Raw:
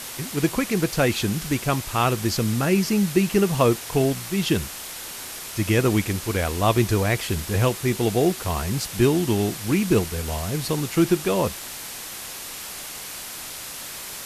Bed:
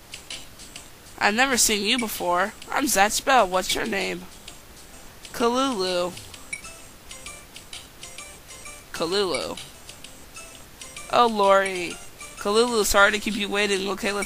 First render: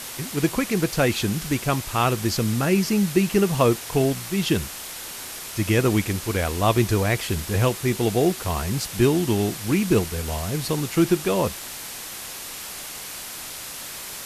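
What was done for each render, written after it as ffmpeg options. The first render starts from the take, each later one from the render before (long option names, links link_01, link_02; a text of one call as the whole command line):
ffmpeg -i in.wav -af anull out.wav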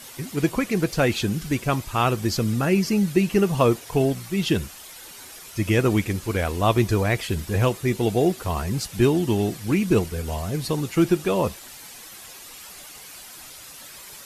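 ffmpeg -i in.wav -af "afftdn=noise_reduction=10:noise_floor=-36" out.wav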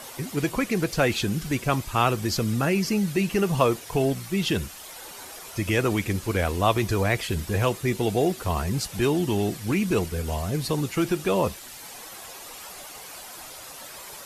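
ffmpeg -i in.wav -filter_complex "[0:a]acrossover=split=480|1000[link_01][link_02][link_03];[link_01]alimiter=limit=-19dB:level=0:latency=1[link_04];[link_02]acompressor=mode=upward:threshold=-39dB:ratio=2.5[link_05];[link_04][link_05][link_03]amix=inputs=3:normalize=0" out.wav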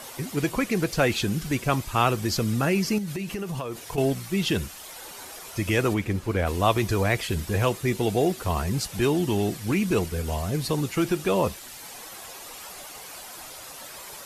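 ffmpeg -i in.wav -filter_complex "[0:a]asettb=1/sr,asplit=3[link_01][link_02][link_03];[link_01]atrim=end=2.984[link_04];[link_02]atrim=start=2.98:end=3.98,asetpts=PTS-STARTPTS,afade=type=in:duration=0.004:curve=qsin,afade=type=out:start_time=0.996:duration=0.004:curve=qsin,acompressor=threshold=-27dB:ratio=12:attack=3.2:release=140:knee=1:detection=peak[link_05];[link_03]atrim=start=3.976[link_06];[link_04][link_05]acrossfade=duration=0.004:curve1=hsin:curve2=qsin[link_07];[link_07][link_06]acrossfade=duration=0.004:curve1=qsin:curve2=hsin,asplit=3[link_08][link_09][link_10];[link_08]afade=type=out:start_time=5.93:duration=0.02[link_11];[link_09]highshelf=frequency=3200:gain=-10,afade=type=in:start_time=5.93:duration=0.02,afade=type=out:start_time=6.46:duration=0.02[link_12];[link_10]afade=type=in:start_time=6.46:duration=0.02[link_13];[link_11][link_12][link_13]amix=inputs=3:normalize=0" out.wav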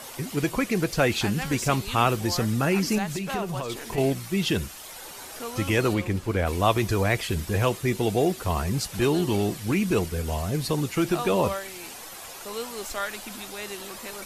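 ffmpeg -i in.wav -i bed.wav -filter_complex "[1:a]volume=-14.5dB[link_01];[0:a][link_01]amix=inputs=2:normalize=0" out.wav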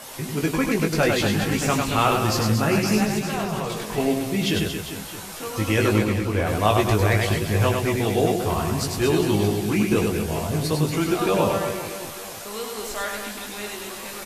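ffmpeg -i in.wav -filter_complex "[0:a]asplit=2[link_01][link_02];[link_02]adelay=19,volume=-5dB[link_03];[link_01][link_03]amix=inputs=2:normalize=0,aecho=1:1:100|230|399|618.7|904.3:0.631|0.398|0.251|0.158|0.1" out.wav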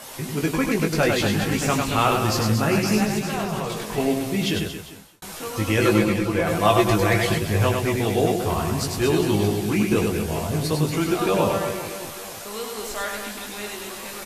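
ffmpeg -i in.wav -filter_complex "[0:a]asettb=1/sr,asplit=3[link_01][link_02][link_03];[link_01]atrim=end=5.814[link_04];[link_02]atrim=start=5.81:end=7.38,asetpts=PTS-STARTPTS,afade=type=in:duration=0.004:curve=qsin,afade=type=out:start_time=1.566:duration=0.004:curve=qsin,aecho=1:1:5.9:0.66,atrim=end_sample=69237[link_05];[link_03]atrim=start=7.376[link_06];[link_04][link_05]acrossfade=duration=0.004:curve1=hsin:curve2=qsin[link_07];[link_07][link_06]acrossfade=duration=0.004:curve1=qsin:curve2=hsin,asplit=2[link_08][link_09];[link_08]atrim=end=5.22,asetpts=PTS-STARTPTS,afade=type=out:start_time=4.43:duration=0.79[link_10];[link_09]atrim=start=5.22,asetpts=PTS-STARTPTS,afade=type=in:duration=0.004:curve=hsin[link_11];[link_10][link_11]concat=n=2:v=0:a=1" out.wav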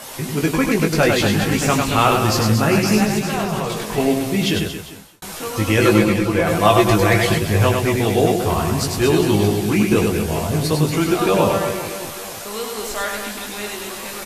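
ffmpeg -i in.wav -af "volume=4.5dB,alimiter=limit=-1dB:level=0:latency=1" out.wav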